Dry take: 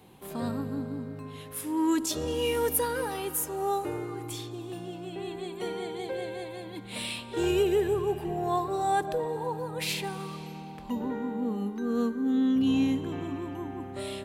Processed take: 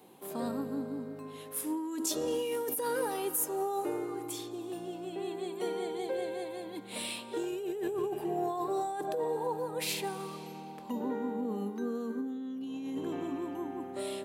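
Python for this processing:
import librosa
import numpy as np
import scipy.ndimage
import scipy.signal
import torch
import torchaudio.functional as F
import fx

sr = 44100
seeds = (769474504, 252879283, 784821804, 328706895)

y = fx.over_compress(x, sr, threshold_db=-30.0, ratio=-1.0)
y = scipy.signal.sosfilt(scipy.signal.butter(2, 280.0, 'highpass', fs=sr, output='sos'), y)
y = fx.peak_eq(y, sr, hz=2400.0, db=-6.5, octaves=2.7)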